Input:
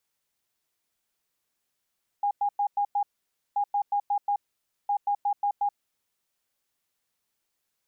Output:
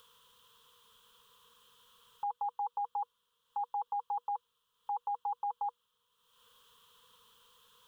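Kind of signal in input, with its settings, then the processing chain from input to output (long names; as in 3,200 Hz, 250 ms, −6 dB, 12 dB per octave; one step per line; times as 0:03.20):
beeps in groups sine 815 Hz, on 0.08 s, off 0.10 s, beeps 5, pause 0.53 s, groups 3, −22 dBFS
upward compression, threshold −50 dBFS
drawn EQ curve 230 Hz 0 dB, 330 Hz −21 dB, 480 Hz +14 dB, 680 Hz −28 dB, 1,000 Hz +14 dB, 1,500 Hz +3 dB, 2,200 Hz −12 dB, 3,200 Hz +13 dB, 4,600 Hz −5 dB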